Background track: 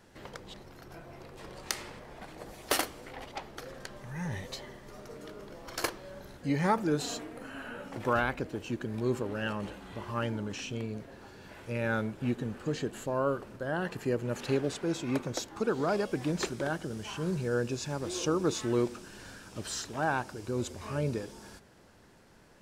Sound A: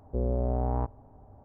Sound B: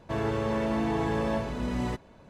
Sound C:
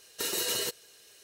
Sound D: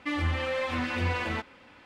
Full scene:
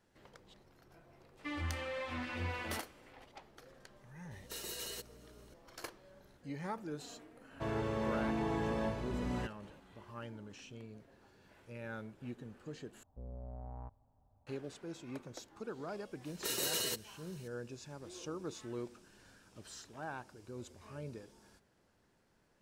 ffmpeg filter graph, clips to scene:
ffmpeg -i bed.wav -i cue0.wav -i cue1.wav -i cue2.wav -i cue3.wav -filter_complex "[3:a]asplit=2[link_01][link_02];[0:a]volume=-14dB[link_03];[link_01]aeval=exprs='val(0)+0.00447*(sin(2*PI*60*n/s)+sin(2*PI*2*60*n/s)/2+sin(2*PI*3*60*n/s)/3+sin(2*PI*4*60*n/s)/4+sin(2*PI*5*60*n/s)/5)':channel_layout=same[link_04];[1:a]equalizer=frequency=370:width=1.9:gain=-11[link_05];[link_03]asplit=2[link_06][link_07];[link_06]atrim=end=13.034[link_08];[link_05]atrim=end=1.44,asetpts=PTS-STARTPTS,volume=-17.5dB[link_09];[link_07]atrim=start=14.466[link_10];[4:a]atrim=end=1.85,asetpts=PTS-STARTPTS,volume=-10.5dB,afade=type=in:duration=0.004:curve=hsin,afade=type=out:start_time=1.846:duration=0.004:curve=hsin,adelay=1390[link_11];[link_04]atrim=end=1.23,asetpts=PTS-STARTPTS,volume=-13dB,afade=type=in:duration=0.004:curve=hsin,afade=type=out:start_time=1.226:duration=0.004:curve=hsin,adelay=4310[link_12];[2:a]atrim=end=2.29,asetpts=PTS-STARTPTS,volume=-7.5dB,afade=type=in:duration=0.004:curve=hsin,afade=type=out:start_time=2.286:duration=0.004:curve=hsin,adelay=7510[link_13];[link_02]atrim=end=1.23,asetpts=PTS-STARTPTS,volume=-5dB,afade=type=in:duration=0.004:curve=hsin,afade=type=out:start_time=1.226:duration=0.004:curve=hsin,adelay=16250[link_14];[link_08][link_09]acrossfade=duration=0.004:curve1=hsin:curve2=hsin[link_15];[link_15][link_10]acrossfade=duration=0.004:curve1=hsin:curve2=hsin[link_16];[link_16][link_11][link_12][link_13][link_14]amix=inputs=5:normalize=0" out.wav

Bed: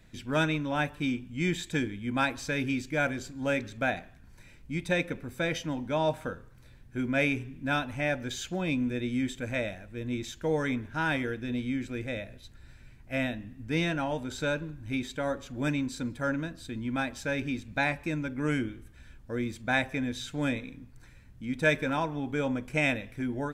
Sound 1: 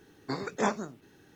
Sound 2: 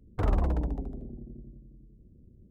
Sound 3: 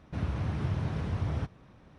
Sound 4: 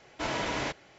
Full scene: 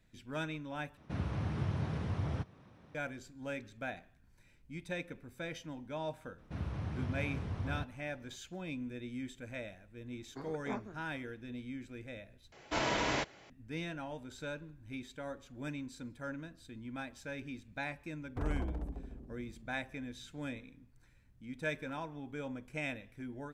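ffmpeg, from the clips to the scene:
ffmpeg -i bed.wav -i cue0.wav -i cue1.wav -i cue2.wav -i cue3.wav -filter_complex "[3:a]asplit=2[link_01][link_02];[0:a]volume=-12dB[link_03];[link_01]highpass=76[link_04];[1:a]lowpass=frequency=1400:poles=1[link_05];[2:a]aecho=1:1:362|724|1086:0.112|0.0337|0.0101[link_06];[link_03]asplit=3[link_07][link_08][link_09];[link_07]atrim=end=0.974[link_10];[link_04]atrim=end=1.98,asetpts=PTS-STARTPTS,volume=-3dB[link_11];[link_08]atrim=start=2.946:end=12.524[link_12];[4:a]atrim=end=0.98,asetpts=PTS-STARTPTS,volume=-1dB[link_13];[link_09]atrim=start=13.496[link_14];[link_02]atrim=end=1.98,asetpts=PTS-STARTPTS,volume=-7dB,afade=type=in:duration=0.004:curve=hsin,afade=type=out:start_time=1.976:duration=0.004:curve=hsin,adelay=6380[link_15];[link_05]atrim=end=1.35,asetpts=PTS-STARTPTS,volume=-12dB,afade=type=in:duration=0.004:curve=hsin,afade=type=out:start_time=1.346:duration=0.004:curve=hsin,adelay=10070[link_16];[link_06]atrim=end=2.5,asetpts=PTS-STARTPTS,volume=-10.5dB,afade=type=in:duration=0.004:curve=hsin,afade=type=out:start_time=2.496:duration=0.004:curve=hsin,adelay=18180[link_17];[link_10][link_11]acrossfade=duration=0.004:curve1=hsin:curve2=hsin[link_18];[link_18][link_12]acrossfade=duration=0.004:curve1=hsin:curve2=hsin[link_19];[link_19][link_13]acrossfade=duration=0.004:curve1=hsin:curve2=hsin[link_20];[link_20][link_14]acrossfade=duration=0.004:curve1=hsin:curve2=hsin[link_21];[link_21][link_15][link_16][link_17]amix=inputs=4:normalize=0" out.wav

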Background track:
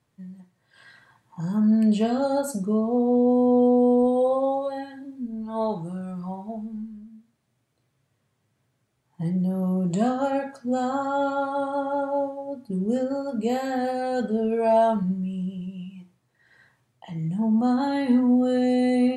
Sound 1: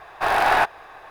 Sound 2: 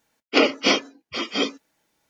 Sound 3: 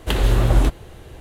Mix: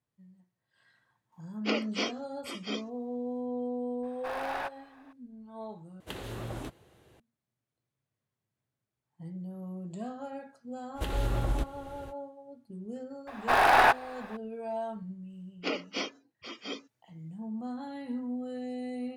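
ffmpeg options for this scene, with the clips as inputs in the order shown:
ffmpeg -i bed.wav -i cue0.wav -i cue1.wav -i cue2.wav -filter_complex "[2:a]asplit=2[link_01][link_02];[1:a]asplit=2[link_03][link_04];[3:a]asplit=2[link_05][link_06];[0:a]volume=-16dB[link_07];[link_03]asoftclip=type=tanh:threshold=-11dB[link_08];[link_05]highpass=120[link_09];[link_06]alimiter=limit=-13dB:level=0:latency=1:release=316[link_10];[link_07]asplit=2[link_11][link_12];[link_11]atrim=end=6.004[link_13];[link_09]atrim=end=1.2,asetpts=PTS-STARTPTS,volume=-16.5dB[link_14];[link_12]atrim=start=7.196[link_15];[link_01]atrim=end=2.09,asetpts=PTS-STARTPTS,volume=-13.5dB,afade=type=in:duration=0.004:curve=hsin,afade=type=out:start_time=2.086:duration=0.004:curve=hsin,adelay=1320[link_16];[link_08]atrim=end=1.1,asetpts=PTS-STARTPTS,volume=-16.5dB,afade=type=in:duration=0.004:curve=hsin,afade=type=out:start_time=1.096:duration=0.004:curve=hsin,adelay=4030[link_17];[link_10]atrim=end=1.2,asetpts=PTS-STARTPTS,volume=-7.5dB,afade=type=in:duration=0.05,afade=type=out:start_time=1.15:duration=0.05,adelay=10940[link_18];[link_04]atrim=end=1.1,asetpts=PTS-STARTPTS,volume=-2.5dB,afade=type=in:duration=0.004:curve=hsin,afade=type=out:start_time=1.096:duration=0.004:curve=hsin,adelay=13270[link_19];[link_02]atrim=end=2.09,asetpts=PTS-STARTPTS,volume=-15.5dB,afade=type=in:duration=0.004:curve=hsin,afade=type=out:start_time=2.086:duration=0.004:curve=hsin,adelay=15300[link_20];[link_13][link_14]acrossfade=duration=0.004:curve1=hsin:curve2=hsin[link_21];[link_21][link_15]acrossfade=duration=0.004:curve1=hsin:curve2=hsin[link_22];[link_22][link_16][link_17][link_18][link_19][link_20]amix=inputs=6:normalize=0" out.wav

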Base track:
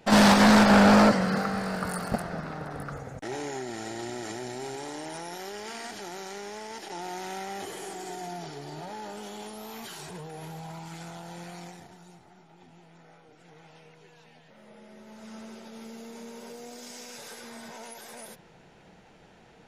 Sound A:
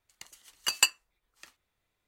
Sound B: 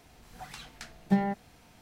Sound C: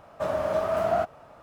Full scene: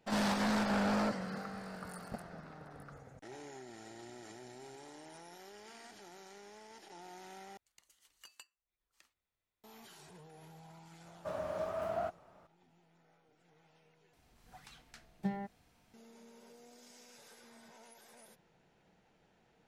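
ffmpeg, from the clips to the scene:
ffmpeg -i bed.wav -i cue0.wav -i cue1.wav -i cue2.wav -filter_complex "[0:a]volume=-15dB[link_01];[1:a]acompressor=threshold=-43dB:ratio=3:attack=1.6:release=387:knee=6:detection=peak[link_02];[link_01]asplit=3[link_03][link_04][link_05];[link_03]atrim=end=7.574[link_06];[link_02]atrim=end=2.07,asetpts=PTS-STARTPTS,volume=-12dB[link_07];[link_04]atrim=start=9.636:end=14.134[link_08];[2:a]atrim=end=1.81,asetpts=PTS-STARTPTS,volume=-11.5dB[link_09];[link_05]atrim=start=15.936[link_10];[3:a]atrim=end=1.42,asetpts=PTS-STARTPTS,volume=-12dB,afade=type=in:duration=0.004:curve=hsin,afade=type=out:start_time=1.416:duration=0.004:curve=hsin,adelay=11050[link_11];[link_06][link_07]acrossfade=duration=0.004:curve1=hsin:curve2=hsin[link_12];[link_12][link_08]acrossfade=duration=0.004:curve1=hsin:curve2=hsin[link_13];[link_13][link_09]acrossfade=duration=0.004:curve1=hsin:curve2=hsin[link_14];[link_14][link_10]acrossfade=duration=0.004:curve1=hsin:curve2=hsin[link_15];[link_15][link_11]amix=inputs=2:normalize=0" out.wav

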